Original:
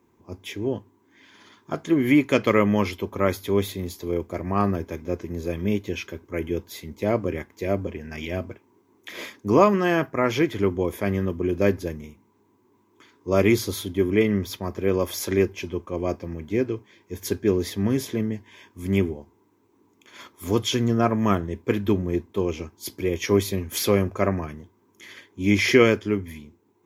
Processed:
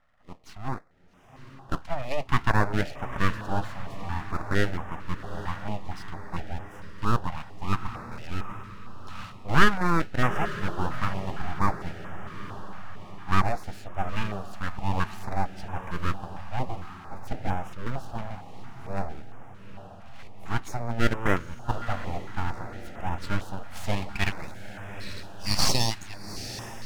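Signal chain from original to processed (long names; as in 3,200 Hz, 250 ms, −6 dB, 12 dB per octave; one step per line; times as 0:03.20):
0:16.58–0:17.48: sub-octave generator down 1 octave, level +3 dB
band-pass filter sweep 770 Hz → 4,100 Hz, 0:23.32–0:26.25
full-wave rectification
feedback delay with all-pass diffusion 838 ms, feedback 58%, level −11.5 dB
notch on a step sequencer 4.4 Hz 380–4,300 Hz
level +8.5 dB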